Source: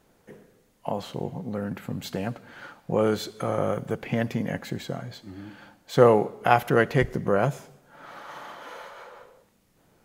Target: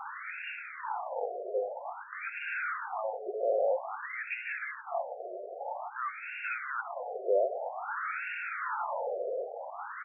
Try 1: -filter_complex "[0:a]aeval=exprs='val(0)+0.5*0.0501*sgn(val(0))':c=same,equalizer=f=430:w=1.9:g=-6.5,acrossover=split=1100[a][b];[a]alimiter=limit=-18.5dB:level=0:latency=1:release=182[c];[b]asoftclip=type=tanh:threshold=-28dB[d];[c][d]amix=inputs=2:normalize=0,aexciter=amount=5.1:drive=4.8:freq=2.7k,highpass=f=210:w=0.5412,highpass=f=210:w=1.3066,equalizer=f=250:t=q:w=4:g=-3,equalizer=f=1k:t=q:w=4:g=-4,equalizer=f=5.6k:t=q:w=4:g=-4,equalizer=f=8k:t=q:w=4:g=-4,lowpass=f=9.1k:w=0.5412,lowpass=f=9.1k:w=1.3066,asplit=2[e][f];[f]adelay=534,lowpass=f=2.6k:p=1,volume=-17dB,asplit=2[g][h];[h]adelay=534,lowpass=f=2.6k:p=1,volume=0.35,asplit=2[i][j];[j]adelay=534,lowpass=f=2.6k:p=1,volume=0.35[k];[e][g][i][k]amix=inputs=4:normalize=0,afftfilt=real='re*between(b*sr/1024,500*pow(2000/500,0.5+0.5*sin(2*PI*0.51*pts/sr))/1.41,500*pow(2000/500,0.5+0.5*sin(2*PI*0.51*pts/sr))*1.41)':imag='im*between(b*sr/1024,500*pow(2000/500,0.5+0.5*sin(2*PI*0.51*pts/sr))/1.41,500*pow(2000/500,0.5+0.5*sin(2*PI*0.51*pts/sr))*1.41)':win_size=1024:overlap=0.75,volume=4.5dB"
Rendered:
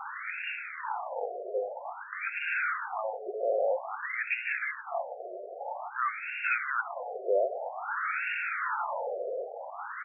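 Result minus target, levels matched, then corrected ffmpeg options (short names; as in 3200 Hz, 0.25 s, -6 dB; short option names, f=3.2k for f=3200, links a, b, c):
soft clip: distortion -7 dB
-filter_complex "[0:a]aeval=exprs='val(0)+0.5*0.0501*sgn(val(0))':c=same,equalizer=f=430:w=1.9:g=-6.5,acrossover=split=1100[a][b];[a]alimiter=limit=-18.5dB:level=0:latency=1:release=182[c];[b]asoftclip=type=tanh:threshold=-39dB[d];[c][d]amix=inputs=2:normalize=0,aexciter=amount=5.1:drive=4.8:freq=2.7k,highpass=f=210:w=0.5412,highpass=f=210:w=1.3066,equalizer=f=250:t=q:w=4:g=-3,equalizer=f=1k:t=q:w=4:g=-4,equalizer=f=5.6k:t=q:w=4:g=-4,equalizer=f=8k:t=q:w=4:g=-4,lowpass=f=9.1k:w=0.5412,lowpass=f=9.1k:w=1.3066,asplit=2[e][f];[f]adelay=534,lowpass=f=2.6k:p=1,volume=-17dB,asplit=2[g][h];[h]adelay=534,lowpass=f=2.6k:p=1,volume=0.35,asplit=2[i][j];[j]adelay=534,lowpass=f=2.6k:p=1,volume=0.35[k];[e][g][i][k]amix=inputs=4:normalize=0,afftfilt=real='re*between(b*sr/1024,500*pow(2000/500,0.5+0.5*sin(2*PI*0.51*pts/sr))/1.41,500*pow(2000/500,0.5+0.5*sin(2*PI*0.51*pts/sr))*1.41)':imag='im*between(b*sr/1024,500*pow(2000/500,0.5+0.5*sin(2*PI*0.51*pts/sr))/1.41,500*pow(2000/500,0.5+0.5*sin(2*PI*0.51*pts/sr))*1.41)':win_size=1024:overlap=0.75,volume=4.5dB"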